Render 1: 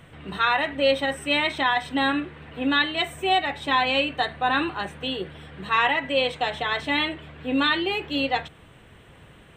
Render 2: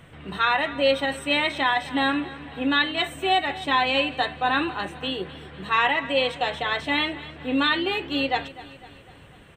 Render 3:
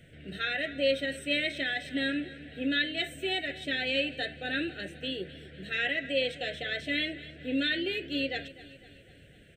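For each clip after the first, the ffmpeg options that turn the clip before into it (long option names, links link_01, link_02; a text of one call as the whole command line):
ffmpeg -i in.wav -af "aecho=1:1:251|502|753|1004|1255:0.133|0.072|0.0389|0.021|0.0113" out.wav
ffmpeg -i in.wav -af "asuperstop=centerf=1000:order=8:qfactor=1.2,volume=-6dB" out.wav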